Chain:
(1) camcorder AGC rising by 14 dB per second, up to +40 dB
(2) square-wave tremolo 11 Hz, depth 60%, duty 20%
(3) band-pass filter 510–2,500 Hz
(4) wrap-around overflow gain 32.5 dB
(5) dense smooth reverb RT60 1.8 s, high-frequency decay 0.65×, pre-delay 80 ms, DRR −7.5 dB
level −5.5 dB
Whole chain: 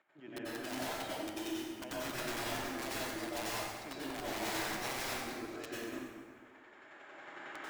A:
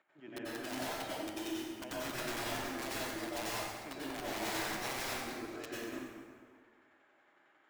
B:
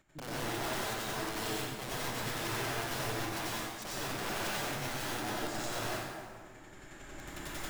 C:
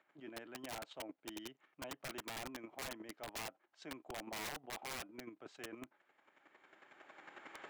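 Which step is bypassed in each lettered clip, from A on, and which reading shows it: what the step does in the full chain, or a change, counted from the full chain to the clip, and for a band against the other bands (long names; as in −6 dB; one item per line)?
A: 1, change in momentary loudness spread −7 LU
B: 3, 125 Hz band +6.5 dB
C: 5, change in crest factor −4.0 dB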